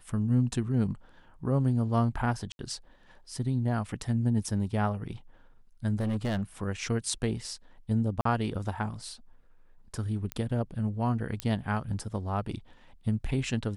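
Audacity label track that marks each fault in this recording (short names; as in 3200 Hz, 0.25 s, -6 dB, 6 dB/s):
2.520000	2.590000	gap 71 ms
6.000000	6.430000	clipped -25.5 dBFS
8.210000	8.250000	gap 44 ms
10.320000	10.320000	pop -17 dBFS
11.400000	11.400000	pop -15 dBFS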